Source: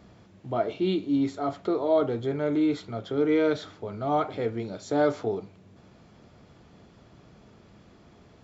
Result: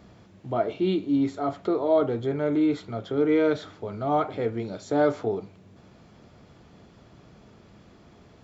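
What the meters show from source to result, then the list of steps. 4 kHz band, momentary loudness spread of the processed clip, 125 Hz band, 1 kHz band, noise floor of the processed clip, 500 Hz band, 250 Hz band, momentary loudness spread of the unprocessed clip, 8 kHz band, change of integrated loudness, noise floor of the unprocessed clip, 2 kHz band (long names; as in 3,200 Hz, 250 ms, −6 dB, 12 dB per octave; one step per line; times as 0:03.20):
−1.0 dB, 9 LU, +1.5 dB, +1.5 dB, −54 dBFS, +1.5 dB, +1.5 dB, 9 LU, can't be measured, +1.5 dB, −56 dBFS, +1.0 dB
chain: dynamic equaliser 5,100 Hz, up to −4 dB, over −49 dBFS, Q 0.79
level +1.5 dB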